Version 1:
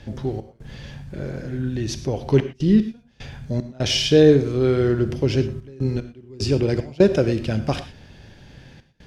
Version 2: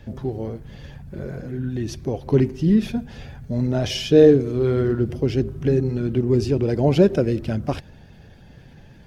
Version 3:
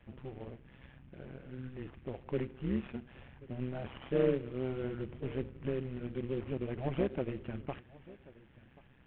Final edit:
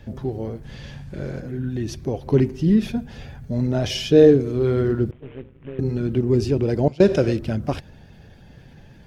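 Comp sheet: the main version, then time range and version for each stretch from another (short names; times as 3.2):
2
0.63–1.4 from 1
5.11–5.79 from 3
6.88–7.37 from 1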